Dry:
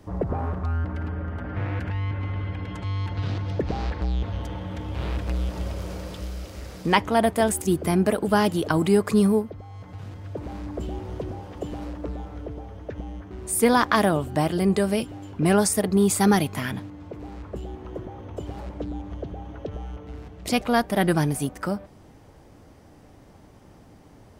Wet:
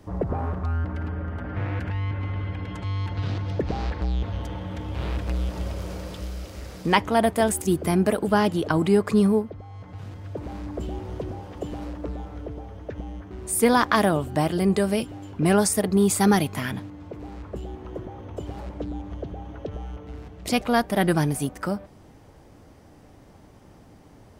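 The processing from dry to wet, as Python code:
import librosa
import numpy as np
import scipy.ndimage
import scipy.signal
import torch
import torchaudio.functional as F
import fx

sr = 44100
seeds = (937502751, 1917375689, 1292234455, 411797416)

y = fx.high_shelf(x, sr, hz=6700.0, db=-8.0, at=(8.29, 9.96))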